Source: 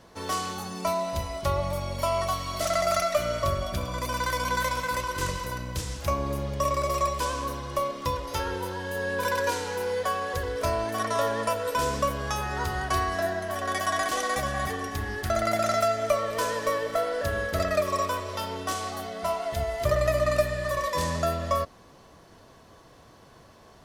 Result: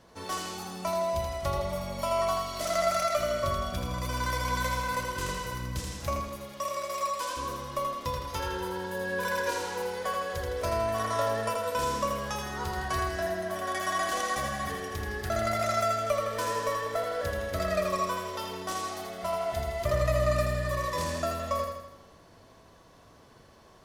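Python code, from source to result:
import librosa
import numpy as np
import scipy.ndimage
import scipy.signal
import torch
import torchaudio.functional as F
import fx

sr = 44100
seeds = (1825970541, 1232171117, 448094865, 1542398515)

y = fx.highpass(x, sr, hz=710.0, slope=6, at=(6.2, 7.37))
y = fx.echo_feedback(y, sr, ms=81, feedback_pct=53, wet_db=-4.5)
y = y * librosa.db_to_amplitude(-4.5)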